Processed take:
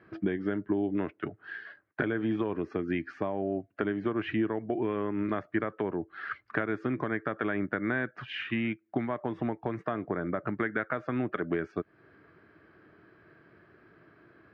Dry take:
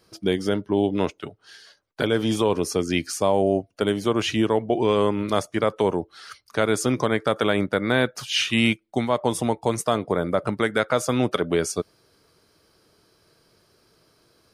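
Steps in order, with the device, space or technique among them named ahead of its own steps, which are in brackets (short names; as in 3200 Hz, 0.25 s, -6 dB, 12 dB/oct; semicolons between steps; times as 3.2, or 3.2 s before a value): bass amplifier (compressor 5:1, threshold -32 dBFS, peak gain reduction 15.5 dB; speaker cabinet 86–2200 Hz, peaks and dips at 320 Hz +5 dB, 500 Hz -7 dB, 900 Hz -5 dB, 1700 Hz +8 dB); gain +4 dB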